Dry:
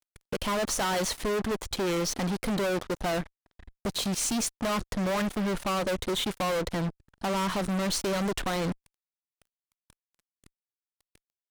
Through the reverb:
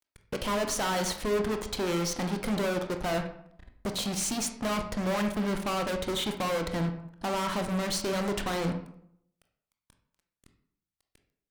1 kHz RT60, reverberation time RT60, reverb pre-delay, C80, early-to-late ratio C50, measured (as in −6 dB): 0.70 s, 0.70 s, 19 ms, 12.5 dB, 8.0 dB